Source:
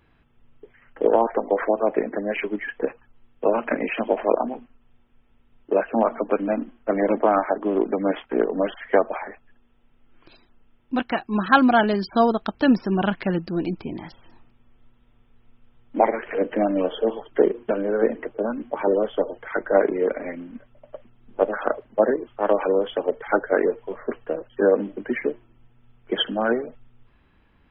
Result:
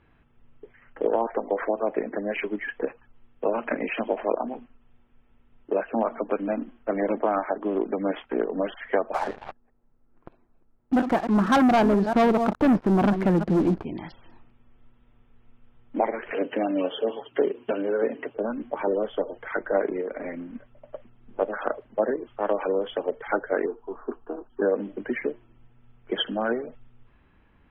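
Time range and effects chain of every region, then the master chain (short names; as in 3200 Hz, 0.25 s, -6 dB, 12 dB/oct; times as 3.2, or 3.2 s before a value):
9.14–13.85 reverse delay 0.187 s, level -13 dB + LPF 1100 Hz + sample leveller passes 3
16.31–18.36 HPF 110 Hz + bell 2800 Hz +9 dB 0.32 oct + comb 7.3 ms, depth 39%
20.01–20.49 LPF 2800 Hz + compressor 2.5:1, threshold -28 dBFS
23.66–24.62 LPF 1800 Hz + fixed phaser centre 550 Hz, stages 6
whole clip: low-pass opened by the level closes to 2900 Hz; compressor 1.5:1, threshold -29 dBFS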